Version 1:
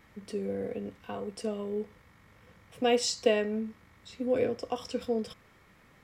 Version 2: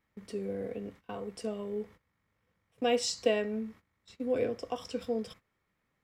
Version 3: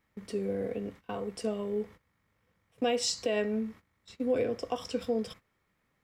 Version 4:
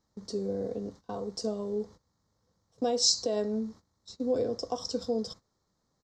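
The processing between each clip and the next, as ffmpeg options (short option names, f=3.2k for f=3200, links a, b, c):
-af "agate=range=-17dB:threshold=-48dB:ratio=16:detection=peak,volume=-2.5dB"
-af "alimiter=limit=-23.5dB:level=0:latency=1:release=113,volume=3.5dB"
-af "firequalizer=gain_entry='entry(910,0);entry(2500,-21);entry(4100,7);entry(6500,9);entry(9900,-12)':delay=0.05:min_phase=1"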